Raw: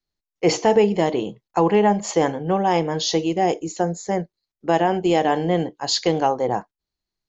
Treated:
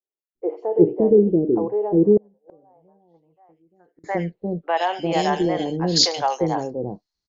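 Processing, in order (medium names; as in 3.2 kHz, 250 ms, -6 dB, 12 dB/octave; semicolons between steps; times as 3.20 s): three bands offset in time mids, highs, lows 80/350 ms, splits 510/2500 Hz; low-pass sweep 380 Hz -> 5.6 kHz, 2.16–5.23 s; 2.17–4.04 s: inverted gate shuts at -22 dBFS, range -36 dB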